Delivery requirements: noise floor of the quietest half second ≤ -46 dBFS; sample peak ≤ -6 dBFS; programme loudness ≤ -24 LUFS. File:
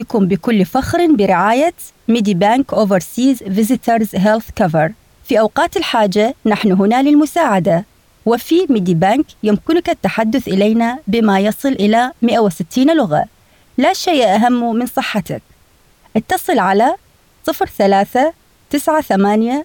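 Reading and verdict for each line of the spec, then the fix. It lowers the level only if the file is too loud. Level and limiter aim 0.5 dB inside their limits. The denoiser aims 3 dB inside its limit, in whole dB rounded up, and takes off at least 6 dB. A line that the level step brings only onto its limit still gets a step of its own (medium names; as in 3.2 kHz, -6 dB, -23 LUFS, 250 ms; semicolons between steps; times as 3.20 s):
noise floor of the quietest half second -51 dBFS: pass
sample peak -4.0 dBFS: fail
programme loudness -14.5 LUFS: fail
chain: trim -10 dB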